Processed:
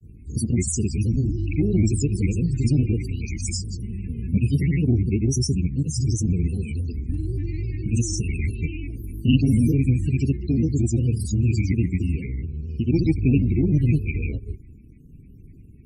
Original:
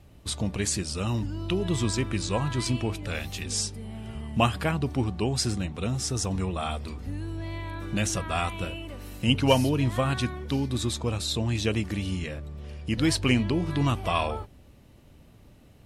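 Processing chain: elliptic band-stop 440–2500 Hz, stop band 70 dB; dynamic bell 1.3 kHz, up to -6 dB, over -52 dBFS, Q 1.5; granulator 100 ms, pitch spread up and down by 3 st; static phaser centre 1.4 kHz, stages 4; in parallel at -9 dB: hard clipper -27.5 dBFS, distortion -12 dB; on the sum: loudest bins only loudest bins 32; trim +8 dB; Opus 48 kbps 48 kHz

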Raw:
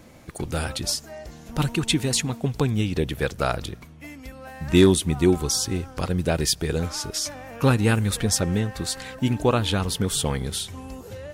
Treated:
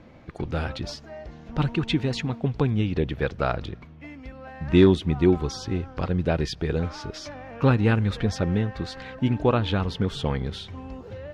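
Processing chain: distance through air 240 m

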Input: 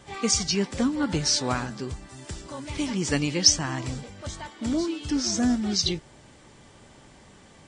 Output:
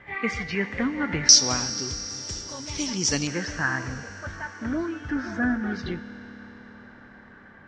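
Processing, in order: resonant low-pass 2 kHz, resonance Q 6.7, from 1.29 s 5.7 kHz, from 3.27 s 1.6 kHz; reverberation RT60 5.0 s, pre-delay 4 ms, DRR 11 dB; trim -2.5 dB

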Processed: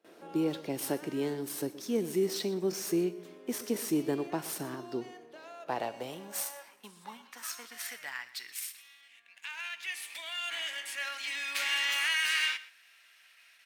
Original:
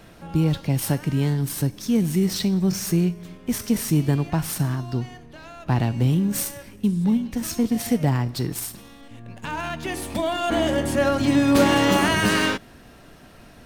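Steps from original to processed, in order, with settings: echo from a far wall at 21 m, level -17 dB; gate with hold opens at -38 dBFS; high-pass sweep 370 Hz -> 2.2 kHz, 5.08–8.58 s; trim -8.5 dB

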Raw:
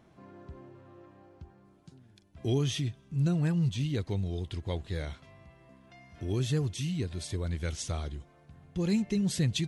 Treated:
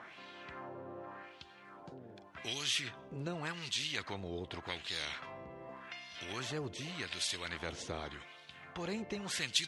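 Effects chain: wah-wah 0.86 Hz 440–3600 Hz, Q 2.6; dynamic bell 680 Hz, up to -8 dB, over -59 dBFS, Q 0.85; spectrum-flattening compressor 2:1; trim +5.5 dB

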